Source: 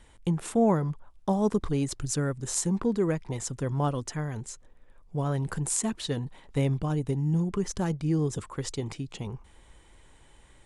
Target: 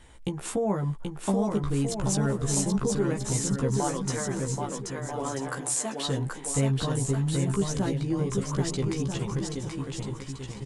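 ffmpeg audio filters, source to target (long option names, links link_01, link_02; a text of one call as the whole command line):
ffmpeg -i in.wav -filter_complex "[0:a]asettb=1/sr,asplit=3[link_01][link_02][link_03];[link_01]atrim=end=3.774[link_04];[link_02]atrim=start=3.77:end=6.08,asetpts=PTS-STARTPTS,afade=type=in:duration=0.004:curve=qsin,afade=type=out:start_time=2.306:duration=0.004:curve=qsin,highpass=frequency=270:width=0.5412,highpass=frequency=270:width=1.3066[link_05];[link_03]atrim=start=6.076[link_06];[link_04][link_05]acrossfade=duration=0.004:curve1=hsin:curve2=qsin[link_07];[link_07][link_06]acrossfade=duration=0.004:curve1=qsin:curve2=hsin,acompressor=threshold=-30dB:ratio=2.5,asplit=2[link_08][link_09];[link_09]adelay=15,volume=-3dB[link_10];[link_08][link_10]amix=inputs=2:normalize=0,aecho=1:1:780|1287|1617|1831|1970:0.631|0.398|0.251|0.158|0.1,volume=2dB" out.wav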